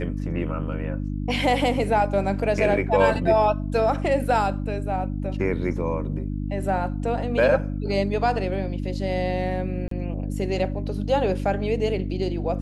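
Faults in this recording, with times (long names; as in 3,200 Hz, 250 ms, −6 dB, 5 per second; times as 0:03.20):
mains hum 50 Hz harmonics 6 −28 dBFS
0:09.88–0:09.91: drop-out 33 ms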